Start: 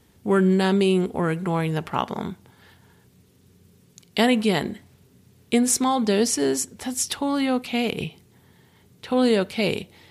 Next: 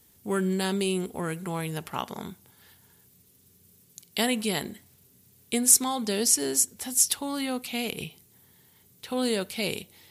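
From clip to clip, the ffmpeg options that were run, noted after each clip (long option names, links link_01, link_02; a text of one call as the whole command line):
ffmpeg -i in.wav -af "aemphasis=mode=production:type=75fm,volume=-7.5dB" out.wav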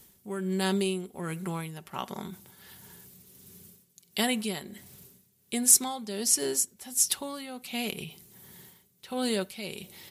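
ffmpeg -i in.wav -af "tremolo=f=1.4:d=0.63,areverse,acompressor=mode=upward:threshold=-39dB:ratio=2.5,areverse,aecho=1:1:5.3:0.36,volume=-1.5dB" out.wav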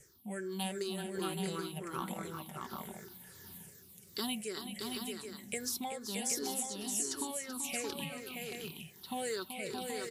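ffmpeg -i in.wav -filter_complex "[0:a]afftfilt=real='re*pow(10,19/40*sin(2*PI*(0.52*log(max(b,1)*sr/1024/100)/log(2)-(-2.7)*(pts-256)/sr)))':imag='im*pow(10,19/40*sin(2*PI*(0.52*log(max(b,1)*sr/1024/100)/log(2)-(-2.7)*(pts-256)/sr)))':win_size=1024:overlap=0.75,acrossover=split=760|7200[link_01][link_02][link_03];[link_01]acompressor=threshold=-32dB:ratio=4[link_04];[link_02]acompressor=threshold=-32dB:ratio=4[link_05];[link_03]acompressor=threshold=-36dB:ratio=4[link_06];[link_04][link_05][link_06]amix=inputs=3:normalize=0,aecho=1:1:382|623|778:0.355|0.596|0.473,volume=-7dB" out.wav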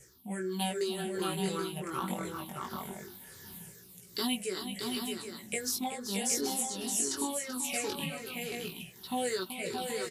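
ffmpeg -i in.wav -af "flanger=delay=16:depth=5.7:speed=0.22,aresample=32000,aresample=44100,volume=7dB" out.wav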